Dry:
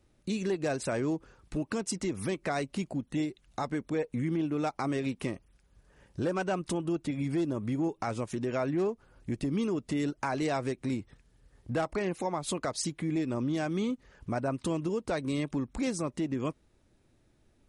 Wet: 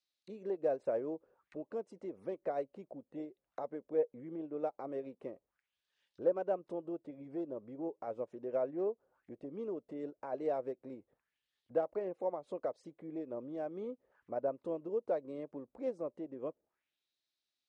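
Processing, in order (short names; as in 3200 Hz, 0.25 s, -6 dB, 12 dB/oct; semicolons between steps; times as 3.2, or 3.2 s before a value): auto-wah 530–4600 Hz, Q 3, down, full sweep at -36 dBFS; upward expander 1.5:1, over -45 dBFS; gain +4 dB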